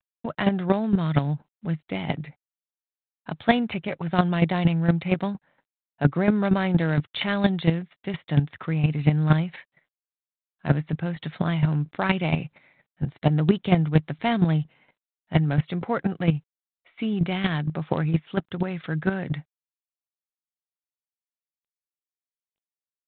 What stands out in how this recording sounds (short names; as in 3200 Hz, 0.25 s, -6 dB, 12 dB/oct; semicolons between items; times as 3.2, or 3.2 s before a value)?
chopped level 4.3 Hz, depth 65%, duty 10%; G.726